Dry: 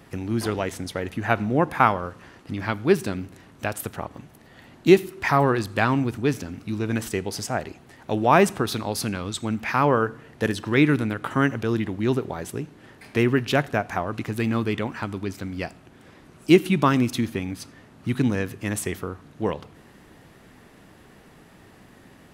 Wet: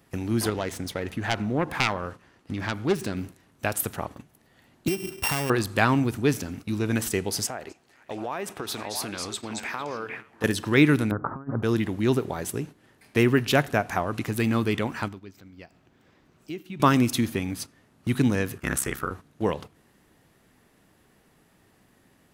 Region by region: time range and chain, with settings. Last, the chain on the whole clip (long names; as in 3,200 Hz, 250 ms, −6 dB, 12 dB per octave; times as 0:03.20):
0:00.49–0:03.17: phase distortion by the signal itself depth 0.36 ms + high-shelf EQ 8,100 Hz −7 dB + downward compressor 1.5 to 1, threshold −27 dBFS
0:04.88–0:05.50: samples sorted by size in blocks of 16 samples + low-shelf EQ 350 Hz +4 dB + downward compressor 10 to 1, threshold −23 dBFS
0:07.47–0:10.44: bass and treble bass −9 dB, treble −5 dB + downward compressor 4 to 1, threshold −30 dBFS + echo through a band-pass that steps 227 ms, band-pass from 5,900 Hz, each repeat −1.4 octaves, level 0 dB
0:11.11–0:11.63: Butterworth low-pass 1,300 Hz + parametric band 530 Hz −2.5 dB 1.9 octaves + compressor whose output falls as the input rises −28 dBFS, ratio −0.5
0:15.08–0:16.80: parametric band 10,000 Hz −13 dB 0.64 octaves + downward compressor 3 to 1, threshold −39 dBFS
0:18.57–0:19.11: parametric band 1,400 Hz +13.5 dB 0.56 octaves + ring modulation 33 Hz
whole clip: noise gate −38 dBFS, range −11 dB; high-shelf EQ 6,600 Hz +8.5 dB